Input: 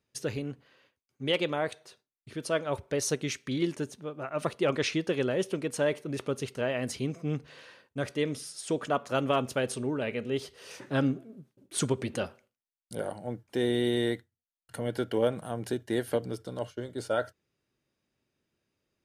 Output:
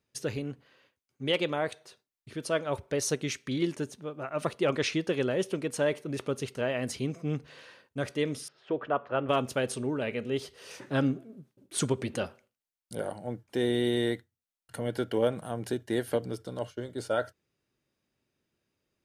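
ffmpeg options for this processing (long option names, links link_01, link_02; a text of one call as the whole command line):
ffmpeg -i in.wav -filter_complex "[0:a]asettb=1/sr,asplit=3[link_01][link_02][link_03];[link_01]atrim=end=8.484[link_04];[link_02]atrim=start=8.48:end=9.29,asetpts=PTS-STARTPTS,afade=type=in:duration=0.004:curve=qsin,afade=type=out:start_time=0.806:duration=0.004:curve=qsin,highpass=100,equalizer=frequency=170:width_type=q:width=4:gain=-9,equalizer=frequency=250:width_type=q:width=4:gain=-6,equalizer=frequency=2200:width_type=q:width=4:gain=-6,lowpass=frequency=2600:width=0.5412,lowpass=frequency=2600:width=1.3066[link_05];[link_03]atrim=start=9.286[link_06];[link_04][link_05]acrossfade=duration=0.004:curve1=hsin:curve2=qsin[link_07];[link_07][link_06]acrossfade=duration=0.004:curve1=qsin:curve2=hsin" out.wav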